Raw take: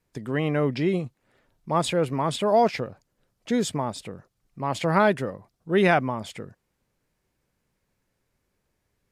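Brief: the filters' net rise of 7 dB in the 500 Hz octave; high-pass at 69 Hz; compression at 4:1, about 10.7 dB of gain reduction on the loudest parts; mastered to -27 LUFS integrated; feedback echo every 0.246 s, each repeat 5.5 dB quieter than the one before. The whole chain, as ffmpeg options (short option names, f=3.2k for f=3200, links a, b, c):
-af "highpass=69,equalizer=f=500:t=o:g=9,acompressor=threshold=-23dB:ratio=4,aecho=1:1:246|492|738|984|1230|1476|1722:0.531|0.281|0.149|0.079|0.0419|0.0222|0.0118,volume=0.5dB"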